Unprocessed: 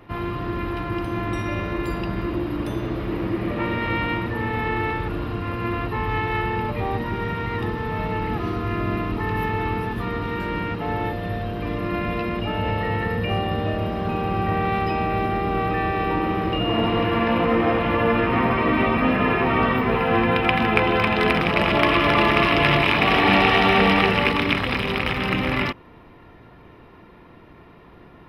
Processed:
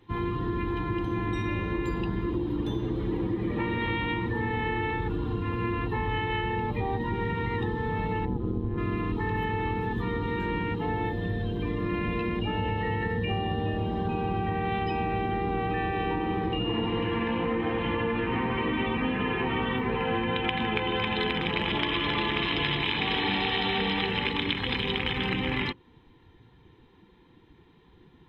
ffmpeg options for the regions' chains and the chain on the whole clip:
ffmpeg -i in.wav -filter_complex "[0:a]asettb=1/sr,asplit=3[link_01][link_02][link_03];[link_01]atrim=end=8.254[link_04];[link_02]atrim=start=8.25:end=8.78,asetpts=PTS-STARTPTS,afade=type=in:duration=0.004:curve=qsin,afade=type=out:start_time=0.526:duration=0.004:curve=qsin,highpass=41,tiltshelf=frequency=730:gain=8.5,tremolo=f=130:d=0.889[link_05];[link_03]atrim=start=8.776[link_06];[link_04][link_05]acrossfade=duration=0.004:curve1=hsin:curve2=qsin[link_07];[link_07][link_06]acrossfade=duration=0.004:curve1=qsin:curve2=hsin,afftdn=noise_reduction=12:noise_floor=-33,superequalizer=8b=0.282:10b=0.501:13b=2.82:15b=2.24:16b=0.631,acompressor=threshold=-25dB:ratio=6" out.wav

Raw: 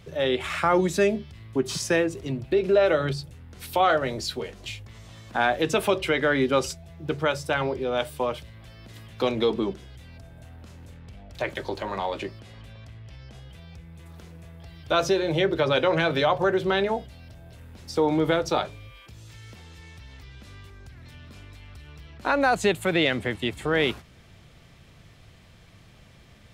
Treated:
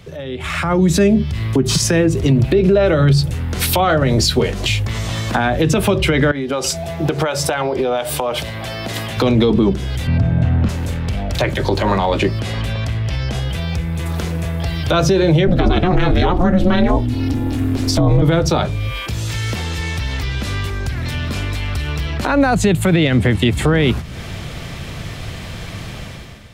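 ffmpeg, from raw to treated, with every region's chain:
ffmpeg -i in.wav -filter_complex "[0:a]asettb=1/sr,asplit=3[link_01][link_02][link_03];[link_01]atrim=end=6.314[link_04];[link_02]atrim=start=6.31:end=9.17,asetpts=PTS-STARTPTS,afade=type=in:duration=0.004:curve=qsin,afade=type=out:start_time=2.856:duration=0.004:curve=qsin,highpass=frequency=200:poles=1,equalizer=frequency=720:width_type=o:width=0.53:gain=6,acompressor=threshold=-35dB:ratio=10:attack=3.2:release=140:knee=1:detection=peak[link_05];[link_03]atrim=start=9.166[link_06];[link_04][link_05]acrossfade=duration=0.004:curve1=hsin:curve2=qsin[link_07];[link_07][link_06]acrossfade=duration=0.004:curve1=qsin:curve2=hsin,asettb=1/sr,asplit=3[link_08][link_09][link_10];[link_08]atrim=end=10.074[link_11];[link_09]atrim=start=10.07:end=10.69,asetpts=PTS-STARTPTS,afade=type=in:duration=0.004:curve=qsin,afade=type=out:start_time=0.616:duration=0.004:curve=qsin,highpass=130,lowpass=6100,bass=frequency=250:gain=15,treble=frequency=4000:gain=-12[link_12];[link_10]atrim=start=10.686[link_13];[link_11][link_12]acrossfade=duration=0.004:curve1=hsin:curve2=qsin[link_14];[link_14][link_13]acrossfade=duration=0.004:curve1=qsin:curve2=hsin,asettb=1/sr,asplit=3[link_15][link_16][link_17];[link_15]atrim=end=15.474[link_18];[link_16]atrim=start=15.47:end=18.22,asetpts=PTS-STARTPTS,afade=type=in:duration=0.004:curve=qsin,afade=type=out:start_time=2.746:duration=0.004:curve=qsin,equalizer=frequency=72:width=0.6:gain=8,aeval=exprs='val(0)*sin(2*PI*180*n/s)':channel_layout=same[link_19];[link_17]atrim=start=18.216[link_20];[link_18][link_19]acrossfade=duration=0.004:curve1=hsin:curve2=qsin[link_21];[link_21][link_20]acrossfade=duration=0.004:curve1=qsin:curve2=hsin,acrossover=split=220[link_22][link_23];[link_23]acompressor=threshold=-40dB:ratio=3[link_24];[link_22][link_24]amix=inputs=2:normalize=0,alimiter=level_in=5dB:limit=-24dB:level=0:latency=1:release=64,volume=-5dB,dynaudnorm=framelen=130:gausssize=9:maxgain=15.5dB,volume=8dB" out.wav

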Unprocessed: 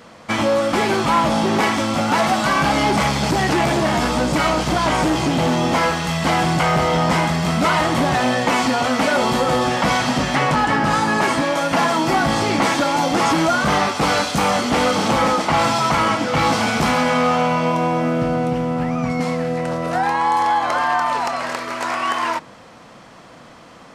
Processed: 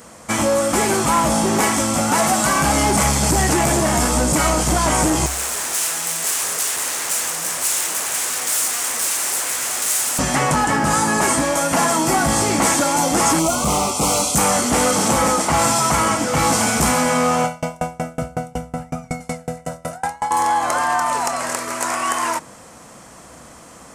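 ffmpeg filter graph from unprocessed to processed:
ffmpeg -i in.wav -filter_complex "[0:a]asettb=1/sr,asplit=3[link_01][link_02][link_03];[link_01]atrim=end=5.264[link_04];[link_02]atrim=start=5.26:end=10.19,asetpts=PTS-STARTPTS,afade=type=in:duration=0.004:curve=qsin,afade=type=out:start_time=4.926:duration=0.004:curve=qsin,aeval=exprs='0.0891*(abs(mod(val(0)/0.0891+3,4)-2)-1)':channel_layout=same,highpass=frequency=860:poles=1[link_05];[link_03]atrim=start=10.186[link_06];[link_04][link_05]acrossfade=duration=0.004:curve1=hsin:curve2=qsin[link_07];[link_07][link_06]acrossfade=duration=0.004:curve1=qsin:curve2=hsin,asettb=1/sr,asplit=3[link_08][link_09][link_10];[link_08]atrim=end=13.394[link_11];[link_09]atrim=start=13.39:end=14.36,asetpts=PTS-STARTPTS,afade=type=in:duration=0.004:curve=qsin,afade=type=out:start_time=0.966:duration=0.004:curve=qsin,asoftclip=type=hard:threshold=-14dB,asuperstop=centerf=1700:order=4:qfactor=1.7[link_12];[link_10]atrim=start=14.356[link_13];[link_11][link_12]acrossfade=duration=0.004:curve1=hsin:curve2=qsin[link_14];[link_14][link_13]acrossfade=duration=0.004:curve1=qsin:curve2=hsin,asettb=1/sr,asplit=3[link_15][link_16][link_17];[link_15]atrim=end=17.444[link_18];[link_16]atrim=start=17.44:end=20.31,asetpts=PTS-STARTPTS,afade=type=in:duration=0.004:curve=qsin,afade=type=out:start_time=2.866:duration=0.004:curve=qsin,aecho=1:1:1.4:0.74,atrim=end_sample=126567,aeval=exprs='val(0)*pow(10,-32*if(lt(mod(5.4*n/s,1),2*abs(5.4)/1000),1-mod(5.4*n/s,1)/(2*abs(5.4)/1000),(mod(5.4*n/s,1)-2*abs(5.4)/1000)/(1-2*abs(5.4)/1000))/20)':channel_layout=same[link_19];[link_17]atrim=start=20.306[link_20];[link_18][link_19]acrossfade=duration=0.004:curve1=hsin:curve2=qsin[link_21];[link_21][link_20]acrossfade=duration=0.004:curve1=qsin:curve2=hsin,equalizer=frequency=66:width=7.9:gain=14.5,acontrast=34,highshelf=frequency=5700:width_type=q:width=1.5:gain=13,volume=-5dB" out.wav

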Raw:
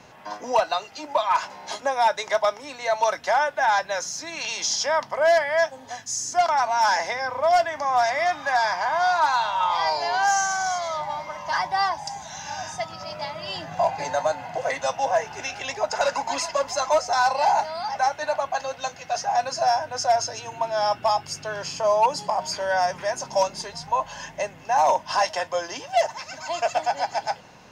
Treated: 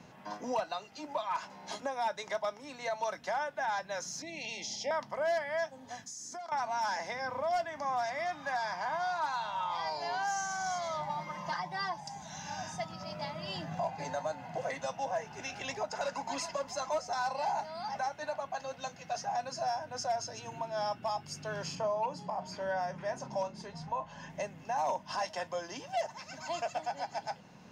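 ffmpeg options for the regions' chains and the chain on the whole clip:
ffmpeg -i in.wav -filter_complex "[0:a]asettb=1/sr,asplit=3[link_01][link_02][link_03];[link_01]atrim=end=4.224[link_04];[link_02]atrim=start=4.22:end=4.91,asetpts=PTS-STARTPTS,afade=type=in:duration=0.004:curve=qsin,afade=type=out:start_time=0.686:duration=0.004:curve=qsin,asuperstop=centerf=1300:order=12:qfactor=1.3,bass=frequency=250:gain=-2,treble=frequency=4000:gain=-9[link_05];[link_03]atrim=start=4.906[link_06];[link_04][link_05]acrossfade=duration=0.004:curve1=hsin:curve2=qsin[link_07];[link_07][link_06]acrossfade=duration=0.004:curve1=qsin:curve2=hsin,asettb=1/sr,asplit=3[link_08][link_09][link_10];[link_08]atrim=end=6.044[link_11];[link_09]atrim=start=6.04:end=6.52,asetpts=PTS-STARTPTS,afade=type=in:duration=0.004:curve=qsin,afade=type=out:start_time=0.476:duration=0.004:curve=qsin,equalizer=frequency=2800:width=7:gain=-8,acompressor=threshold=-32dB:ratio=16:attack=3.2:release=140:knee=1:detection=peak,highpass=190[link_12];[link_10]atrim=start=6.516[link_13];[link_11][link_12]acrossfade=duration=0.004:curve1=hsin:curve2=qsin[link_14];[link_14][link_13]acrossfade=duration=0.004:curve1=qsin:curve2=hsin,asettb=1/sr,asplit=3[link_15][link_16][link_17];[link_15]atrim=end=11.094[link_18];[link_16]atrim=start=11.09:end=12.01,asetpts=PTS-STARTPTS,afade=type=in:duration=0.004:curve=qsin,afade=type=out:start_time=0.916:duration=0.004:curve=qsin,acrossover=split=7000[link_19][link_20];[link_20]acompressor=threshold=-54dB:ratio=4:attack=1:release=60[link_21];[link_19][link_21]amix=inputs=2:normalize=0,aecho=1:1:5.7:0.82,atrim=end_sample=40572[link_22];[link_17]atrim=start=12.006[link_23];[link_18][link_22]acrossfade=duration=0.004:curve1=hsin:curve2=qsin[link_24];[link_24][link_23]acrossfade=duration=0.004:curve1=qsin:curve2=hsin,asettb=1/sr,asplit=3[link_25][link_26][link_27];[link_25]atrim=end=21.754[link_28];[link_26]atrim=start=21.75:end=24.3,asetpts=PTS-STARTPTS,afade=type=in:duration=0.004:curve=qsin,afade=type=out:start_time=2.546:duration=0.004:curve=qsin,highshelf=frequency=4600:gain=-11.5,asplit=2[link_29][link_30];[link_30]adelay=37,volume=-14dB[link_31];[link_29][link_31]amix=inputs=2:normalize=0,atrim=end_sample=112455[link_32];[link_27]atrim=start=24.296[link_33];[link_28][link_32]acrossfade=duration=0.004:curve1=hsin:curve2=qsin[link_34];[link_34][link_33]acrossfade=duration=0.004:curve1=qsin:curve2=hsin,alimiter=limit=-18dB:level=0:latency=1:release=436,equalizer=frequency=190:width_type=o:width=1.3:gain=10.5,volume=-8.5dB" out.wav

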